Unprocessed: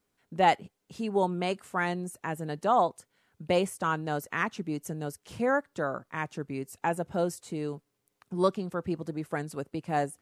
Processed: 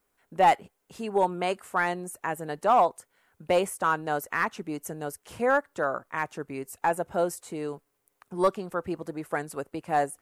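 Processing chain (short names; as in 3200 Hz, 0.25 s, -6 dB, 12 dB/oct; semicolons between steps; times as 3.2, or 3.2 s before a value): bell 150 Hz -13 dB 2.8 oct; in parallel at -6 dB: wavefolder -22.5 dBFS; on the sum: bell 4300 Hz -9 dB 2 oct; gain +4.5 dB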